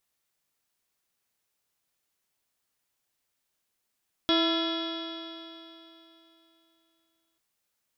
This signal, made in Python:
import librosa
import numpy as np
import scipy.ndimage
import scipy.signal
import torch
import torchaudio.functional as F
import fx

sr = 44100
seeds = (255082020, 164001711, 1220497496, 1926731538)

y = fx.additive_stiff(sr, length_s=3.09, hz=327.0, level_db=-23.5, upper_db=(-6.0, -11.5, -8, -14.0, -17.5, -17, -16, -1, -9.5, -20, -17.0, -19.0), decay_s=3.15, stiffness=0.0038)